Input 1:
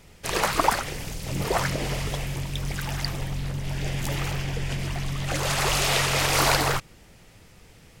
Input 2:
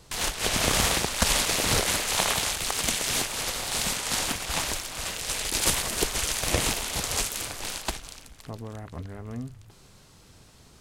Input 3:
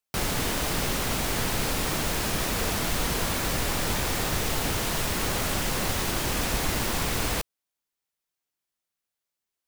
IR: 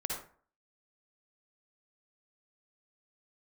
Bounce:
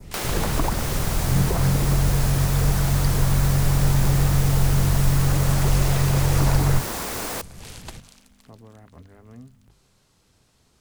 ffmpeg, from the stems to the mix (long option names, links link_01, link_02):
-filter_complex "[0:a]lowshelf=frequency=370:gain=11.5,volume=1.5dB[link_01];[1:a]volume=-8.5dB[link_02];[2:a]highpass=350,acontrast=38,aeval=exprs='val(0)+0.00251*(sin(2*PI*50*n/s)+sin(2*PI*2*50*n/s)/2+sin(2*PI*3*50*n/s)/3+sin(2*PI*4*50*n/s)/4+sin(2*PI*5*50*n/s)/5)':channel_layout=same,volume=3dB[link_03];[link_01][link_02][link_03]amix=inputs=3:normalize=0,bandreject=frequency=50:width_type=h:width=6,bandreject=frequency=100:width_type=h:width=6,bandreject=frequency=150:width_type=h:width=6,adynamicequalizer=threshold=0.0158:dfrequency=2900:dqfactor=0.93:tfrequency=2900:tqfactor=0.93:attack=5:release=100:ratio=0.375:range=3:mode=cutabove:tftype=bell,acrossover=split=210[link_04][link_05];[link_05]acompressor=threshold=-33dB:ratio=2[link_06];[link_04][link_06]amix=inputs=2:normalize=0"